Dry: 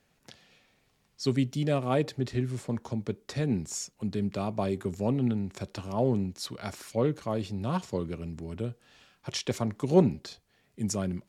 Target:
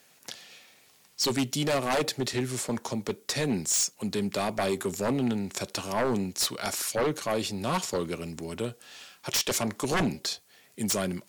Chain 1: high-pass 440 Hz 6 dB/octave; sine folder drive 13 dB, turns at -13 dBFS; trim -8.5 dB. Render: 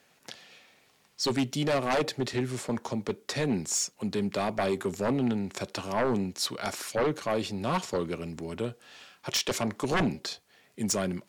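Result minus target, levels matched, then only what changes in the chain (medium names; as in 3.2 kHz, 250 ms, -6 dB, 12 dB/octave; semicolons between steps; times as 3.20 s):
8 kHz band -3.0 dB
add after high-pass: treble shelf 5 kHz +11.5 dB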